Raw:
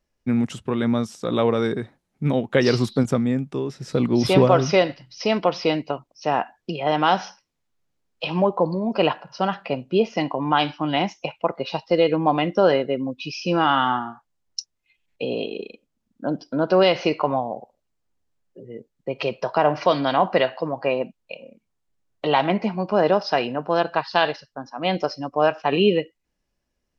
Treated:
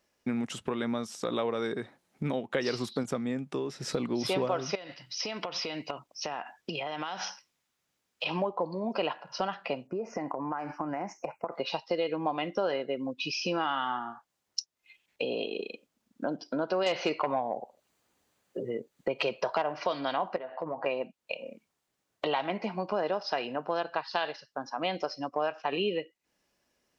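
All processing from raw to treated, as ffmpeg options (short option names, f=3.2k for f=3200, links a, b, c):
-filter_complex "[0:a]asettb=1/sr,asplit=3[a][b][c];[a]atrim=end=4.754[d];[b]atrim=start=4.75:end=8.26,asetpts=PTS-STARTPTS,afade=t=in:d=0.004:c=qsin,afade=t=out:st=3.506:d=0.004:c=qsin,equalizer=f=430:w=0.48:g=-5.5,bandreject=f=4.3k:w=28,acompressor=threshold=-30dB:ratio=12:attack=3.2:release=140:knee=1:detection=peak[e];[c]atrim=start=8.256[f];[d][e]acrossfade=d=0.004:c1=hsin:c2=qsin[g];[g][f]acrossfade=d=0.004:c1=qsin:c2=hsin,asettb=1/sr,asplit=3[h][i][j];[h]atrim=end=9.874[k];[i]atrim=start=9.87:end=11.52,asetpts=PTS-STARTPTS,afade=t=in:d=0.004:c=qsin,afade=t=out:st=1.646:d=0.004:c=qsin,acompressor=threshold=-26dB:ratio=5:attack=3.2:release=140:knee=1:detection=peak,asuperstop=centerf=3500:order=4:qfactor=0.69[l];[j]atrim=start=11.516[m];[k][l]acrossfade=d=0.004:c1=hsin:c2=qsin[n];[n][m]acrossfade=d=0.004:c1=qsin:c2=hsin,asettb=1/sr,asplit=3[o][p][q];[o]atrim=end=16.864[r];[p]atrim=start=16.86:end=19.62,asetpts=PTS-STARTPTS,afade=t=in:d=0.004:c=qsin,afade=t=out:st=2.756:d=0.004:c=qsin,bandreject=f=5.3k:w=15,aeval=exprs='0.531*sin(PI/2*1.41*val(0)/0.531)':c=same[s];[q]atrim=start=19.616[t];[r][s]acrossfade=d=0.004:c1=hsin:c2=qsin[u];[u][t]acrossfade=d=0.004:c1=qsin:c2=hsin,asettb=1/sr,asplit=3[v][w][x];[v]atrim=end=20.364[y];[w]atrim=start=20.36:end=20.86,asetpts=PTS-STARTPTS,afade=t=in:d=0.004:c=qsin,afade=t=out:st=0.496:d=0.004:c=qsin,lowpass=1.3k,acompressor=threshold=-28dB:ratio=5:attack=3.2:release=140:knee=1:detection=peak,asplit=2[z][aa];[aa]adelay=12,volume=-8dB[ab];[z][ab]amix=inputs=2:normalize=0,atrim=end_sample=22050[ac];[x]atrim=start=20.856[ad];[y][ac]acrossfade=d=0.004:c1=hsin:c2=qsin[ae];[ae][ad]acrossfade=d=0.004:c1=qsin:c2=hsin,highpass=f=380:p=1,acompressor=threshold=-40dB:ratio=3,volume=7dB"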